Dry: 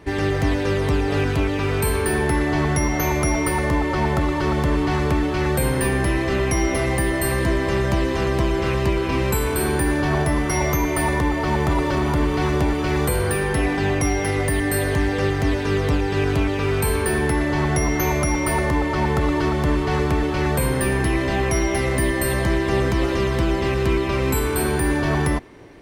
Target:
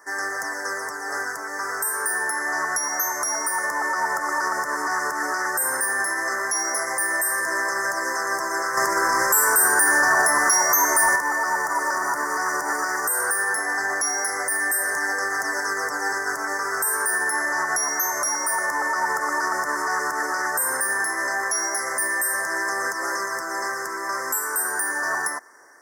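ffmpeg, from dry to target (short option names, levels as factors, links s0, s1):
-filter_complex "[0:a]highpass=1500,dynaudnorm=f=510:g=17:m=4.22,alimiter=limit=0.0944:level=0:latency=1:release=206,asettb=1/sr,asplit=3[s0][s1][s2];[s0]atrim=end=8.774[s3];[s1]atrim=start=8.77:end=11.16,asetpts=PTS-STARTPTS,afade=t=in:d=0.004:c=qsin,afade=t=out:st=2.386:d=0.004:c=qsin,acontrast=58[s4];[s2]atrim=start=11.156[s5];[s3][s4]acrossfade=d=0.004:c1=hsin:c2=qsin[s6];[s6][s5]acrossfade=d=0.004:c1=qsin:c2=hsin,asoftclip=type=tanh:threshold=0.158,asuperstop=centerf=3100:order=12:qfactor=0.91,volume=2.66"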